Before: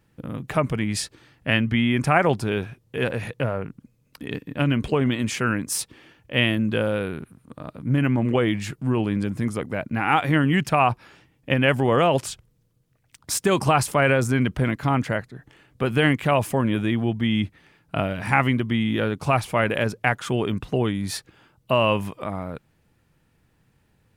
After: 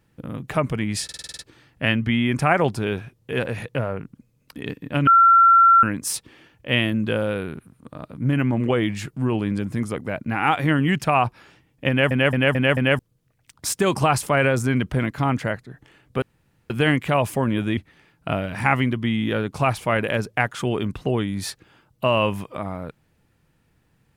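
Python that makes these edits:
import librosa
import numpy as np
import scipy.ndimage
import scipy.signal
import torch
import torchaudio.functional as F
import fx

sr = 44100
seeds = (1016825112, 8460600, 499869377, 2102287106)

y = fx.edit(x, sr, fx.stutter(start_s=1.04, slice_s=0.05, count=8),
    fx.bleep(start_s=4.72, length_s=0.76, hz=1360.0, db=-9.5),
    fx.stutter_over(start_s=11.54, slice_s=0.22, count=5),
    fx.insert_room_tone(at_s=15.87, length_s=0.48),
    fx.cut(start_s=16.94, length_s=0.5), tone=tone)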